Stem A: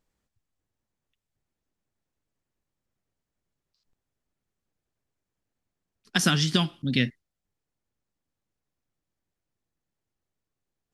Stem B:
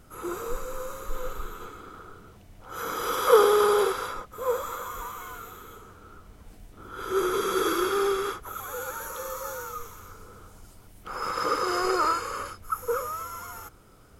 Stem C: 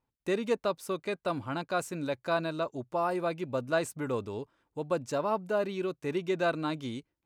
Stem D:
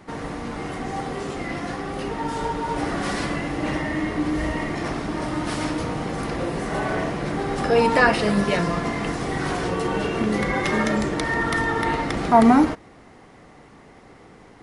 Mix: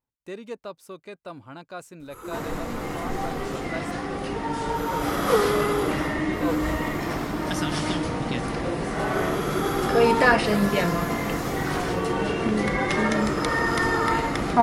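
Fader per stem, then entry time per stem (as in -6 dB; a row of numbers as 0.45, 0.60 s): -9.0, -4.0, -7.0, -1.0 dB; 1.35, 2.00, 0.00, 2.25 s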